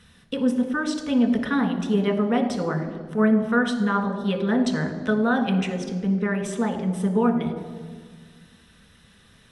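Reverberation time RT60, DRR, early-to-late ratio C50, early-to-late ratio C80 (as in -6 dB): 1.7 s, 3.5 dB, 9.0 dB, 10.0 dB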